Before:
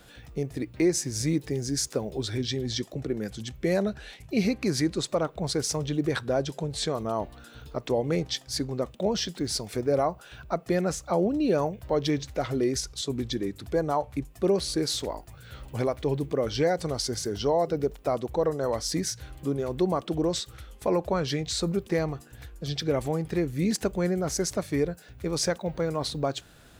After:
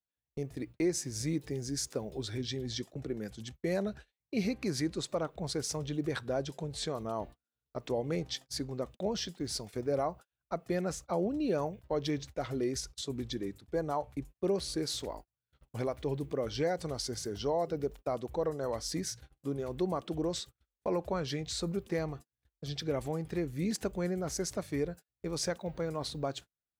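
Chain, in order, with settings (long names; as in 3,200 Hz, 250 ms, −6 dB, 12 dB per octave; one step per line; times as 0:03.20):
noise gate −38 dBFS, range −42 dB
level −7 dB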